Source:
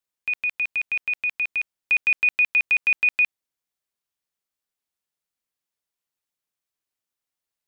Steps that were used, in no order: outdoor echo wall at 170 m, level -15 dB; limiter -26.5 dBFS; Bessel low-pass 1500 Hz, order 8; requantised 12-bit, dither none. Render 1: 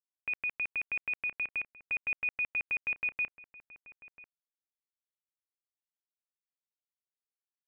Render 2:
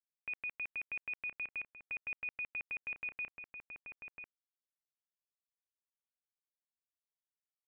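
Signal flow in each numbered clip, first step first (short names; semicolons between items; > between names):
Bessel low-pass > limiter > requantised > outdoor echo; outdoor echo > limiter > requantised > Bessel low-pass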